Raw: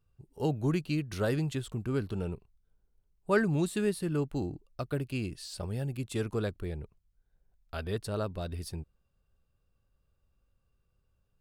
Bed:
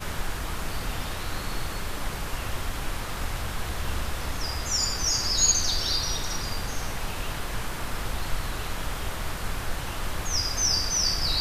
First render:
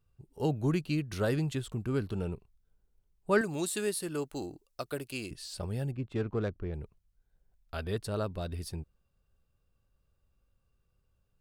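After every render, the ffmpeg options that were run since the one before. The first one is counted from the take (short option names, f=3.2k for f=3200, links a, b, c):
-filter_complex "[0:a]asettb=1/sr,asplit=3[a][b][c];[a]atrim=end=3.414[d];[b]atrim=start=3.41:end=5.31,asetpts=PTS-STARTPTS,afade=t=in:d=0.004:c=qsin,afade=t=out:st=1.896:d=0.004:c=qsin,bass=f=250:g=-12,treble=f=4k:g=8[e];[c]atrim=start=5.306[f];[d][e]acrossfade=d=0.004:c1=hsin:c2=qsin[g];[g][f]acrossfade=d=0.004:c1=qsin:c2=hsin,asettb=1/sr,asplit=3[h][i][j];[h]atrim=end=5.914[k];[i]atrim=start=5.91:end=6.74,asetpts=PTS-STARTPTS,afade=t=in:d=0.004:c=qsin,afade=t=out:st=0.826:d=0.004:c=qsin,adynamicsmooth=sensitivity=4:basefreq=1.5k[l];[j]atrim=start=6.736[m];[k][l]acrossfade=d=0.004:c1=hsin:c2=qsin[n];[n][m]acrossfade=d=0.004:c1=qsin:c2=hsin"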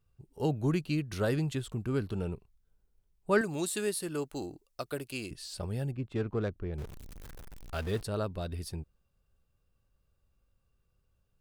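-filter_complex "[0:a]asettb=1/sr,asplit=3[a][b][c];[a]atrim=end=6.784[d];[b]atrim=start=6.78:end=8.03,asetpts=PTS-STARTPTS,afade=t=in:d=0.004:c=qsin,afade=t=out:st=1.246:d=0.004:c=qsin,aeval=exprs='val(0)+0.5*0.01*sgn(val(0))':c=same[e];[c]atrim=start=8.026[f];[d][e]acrossfade=d=0.004:c1=hsin:c2=qsin[g];[g][f]acrossfade=d=0.004:c1=qsin:c2=hsin"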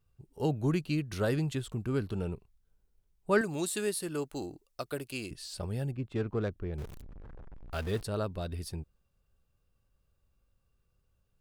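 -filter_complex "[0:a]asettb=1/sr,asplit=3[a][b][c];[a]atrim=end=7.014[d];[b]atrim=start=7.01:end=7.71,asetpts=PTS-STARTPTS,afade=t=in:d=0.004:c=qsin,afade=t=out:st=0.696:d=0.004:c=qsin,lowpass=1.2k[e];[c]atrim=start=7.706[f];[d][e]acrossfade=d=0.004:c1=hsin:c2=qsin[g];[g][f]acrossfade=d=0.004:c1=qsin:c2=hsin"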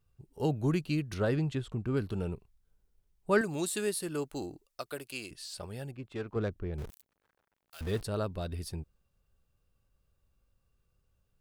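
-filter_complex "[0:a]asettb=1/sr,asplit=3[a][b][c];[a]atrim=end=1.144[d];[b]atrim=start=1.14:end=1.97,asetpts=PTS-STARTPTS,afade=t=in:d=0.004:c=qsin,afade=t=out:st=0.826:d=0.004:c=qsin,aemphasis=mode=reproduction:type=50fm[e];[c]atrim=start=1.966[f];[d][e]acrossfade=d=0.004:c1=hsin:c2=qsin[g];[g][f]acrossfade=d=0.004:c1=qsin:c2=hsin,asettb=1/sr,asplit=3[h][i][j];[h]atrim=end=4.674[k];[i]atrim=start=4.67:end=6.36,asetpts=PTS-STARTPTS,afade=t=in:d=0.004:c=qsin,afade=t=out:st=1.686:d=0.004:c=qsin,lowshelf=f=350:g=-9.5[l];[j]atrim=start=6.356[m];[k][l]acrossfade=d=0.004:c1=hsin:c2=qsin[n];[n][m]acrossfade=d=0.004:c1=qsin:c2=hsin,asettb=1/sr,asplit=3[o][p][q];[o]atrim=end=6.904[r];[p]atrim=start=6.9:end=7.81,asetpts=PTS-STARTPTS,afade=t=in:d=0.004:c=qsin,afade=t=out:st=0.906:d=0.004:c=qsin,aderivative[s];[q]atrim=start=7.806[t];[r][s]acrossfade=d=0.004:c1=hsin:c2=qsin[u];[u][t]acrossfade=d=0.004:c1=qsin:c2=hsin"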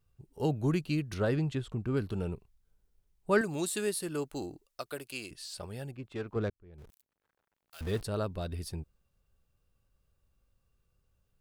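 -filter_complex "[0:a]asplit=2[a][b];[a]atrim=end=6.5,asetpts=PTS-STARTPTS,afade=t=out:st=6.496:d=0.004:c=hsin[c];[b]atrim=start=6.5,asetpts=PTS-STARTPTS,afade=t=in:d=1.38[d];[c][d]concat=n=2:v=0:a=1"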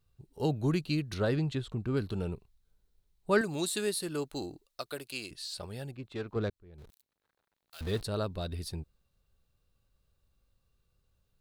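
-af "equalizer=f=4k:w=3.8:g=7.5"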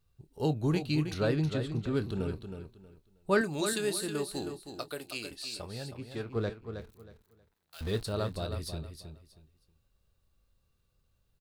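-filter_complex "[0:a]asplit=2[a][b];[b]adelay=26,volume=-13dB[c];[a][c]amix=inputs=2:normalize=0,aecho=1:1:317|634|951:0.376|0.0902|0.0216"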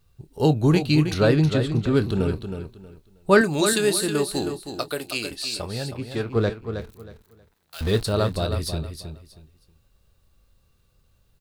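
-af "volume=10.5dB"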